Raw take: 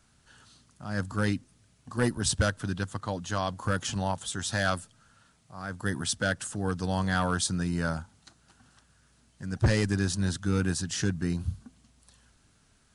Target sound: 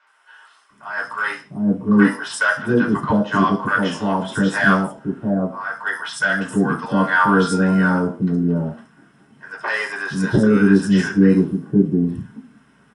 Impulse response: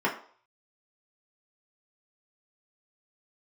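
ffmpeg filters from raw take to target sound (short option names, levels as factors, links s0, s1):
-filter_complex "[0:a]acrossover=split=650|5200[s0][s1][s2];[s2]adelay=70[s3];[s0]adelay=700[s4];[s4][s1][s3]amix=inputs=3:normalize=0,asettb=1/sr,asplit=3[s5][s6][s7];[s5]atrim=end=6.924[s8];[s6]atrim=start=6.92:end=7.89,asetpts=PTS-STARTPTS,afade=t=in:d=0.004:c=qsin,afade=t=out:st=0.966:d=0.004:c=qsin,aeval=exprs='val(0)+0.00501*sin(2*PI*1400*n/s)':c=same[s9];[s7]atrim=start=7.886[s10];[s8][s9]acrossfade=d=0.004:c1=hsin:c2=qsin[s11];[s11][s10]acrossfade=d=0.004:c1=qsin:c2=hsin[s12];[1:a]atrim=start_sample=2205,afade=t=out:st=0.25:d=0.01,atrim=end_sample=11466[s13];[s12][s13]afir=irnorm=-1:irlink=0,volume=1.12"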